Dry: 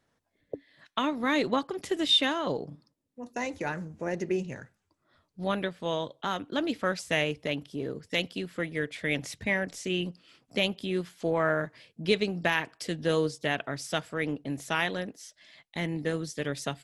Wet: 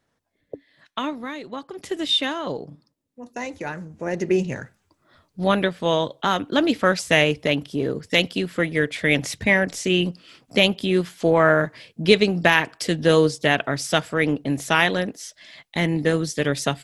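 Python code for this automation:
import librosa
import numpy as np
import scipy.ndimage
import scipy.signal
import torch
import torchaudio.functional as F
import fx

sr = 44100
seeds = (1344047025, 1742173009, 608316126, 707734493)

y = fx.gain(x, sr, db=fx.line((1.13, 1.5), (1.4, -10.0), (1.86, 2.0), (3.87, 2.0), (4.4, 10.0)))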